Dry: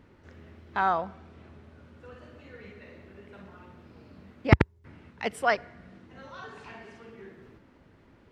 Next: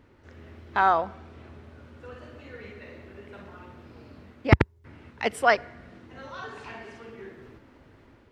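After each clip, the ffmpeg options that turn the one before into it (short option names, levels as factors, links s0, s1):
-af "equalizer=f=180:t=o:w=0.25:g=-10,dynaudnorm=f=140:g=5:m=1.68"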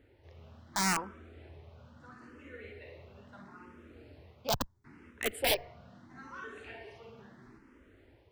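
-filter_complex "[0:a]aeval=exprs='(mod(5.96*val(0)+1,2)-1)/5.96':c=same,asplit=2[s0][s1];[s1]afreqshift=0.75[s2];[s0][s2]amix=inputs=2:normalize=1,volume=0.668"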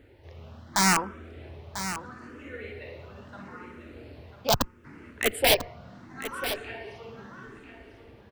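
-af "aecho=1:1:994:0.282,volume=2.51"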